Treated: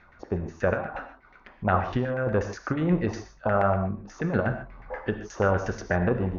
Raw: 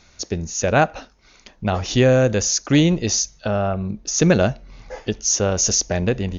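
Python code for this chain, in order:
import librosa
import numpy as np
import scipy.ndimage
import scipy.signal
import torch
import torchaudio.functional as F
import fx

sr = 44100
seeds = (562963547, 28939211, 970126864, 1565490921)

y = fx.filter_lfo_lowpass(x, sr, shape='saw_down', hz=8.3, low_hz=850.0, high_hz=1900.0, q=4.1)
y = fx.over_compress(y, sr, threshold_db=-16.0, ratio=-0.5)
y = fx.rev_gated(y, sr, seeds[0], gate_ms=170, shape='flat', drr_db=7.0)
y = y * 10.0 ** (-7.0 / 20.0)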